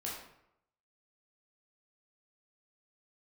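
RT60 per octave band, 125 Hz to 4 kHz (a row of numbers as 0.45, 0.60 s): 0.85, 0.75, 0.80, 0.80, 0.65, 0.50 s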